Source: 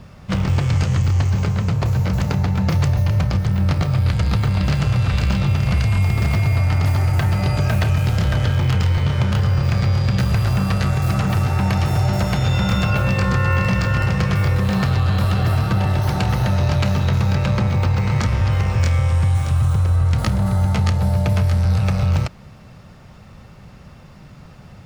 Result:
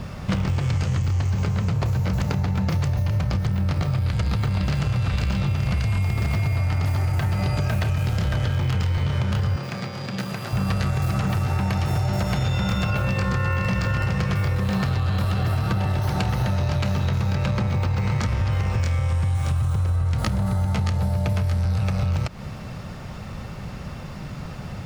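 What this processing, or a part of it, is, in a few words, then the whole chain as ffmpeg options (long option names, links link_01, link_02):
serial compression, peaks first: -filter_complex "[0:a]acompressor=threshold=-25dB:ratio=4,acompressor=threshold=-30dB:ratio=2,asettb=1/sr,asplit=3[link_01][link_02][link_03];[link_01]atrim=end=9.564[link_04];[link_02]atrim=start=9.56:end=10.53,asetpts=PTS-STARTPTS,afade=type=in:duration=0.004:curve=qsin,afade=type=out:start_time=0.966:duration=0.004:curve=qsin,highpass=frequency=160:width=0.5412,highpass=frequency=160:width=1.3066[link_05];[link_03]atrim=start=10.526[link_06];[link_04][link_05]acrossfade=duration=0.004:curve1=hsin:curve2=qsin[link_07];[link_07][link_06]acrossfade=duration=0.004:curve1=qsin:curve2=hsin,volume=8dB"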